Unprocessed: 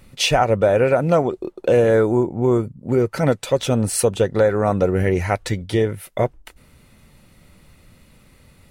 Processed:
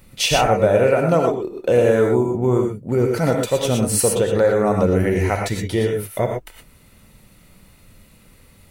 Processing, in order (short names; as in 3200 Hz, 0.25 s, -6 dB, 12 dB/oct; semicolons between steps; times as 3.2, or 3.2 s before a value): high shelf 11000 Hz +9.5 dB; non-linear reverb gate 0.14 s rising, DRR 2 dB; gain -1.5 dB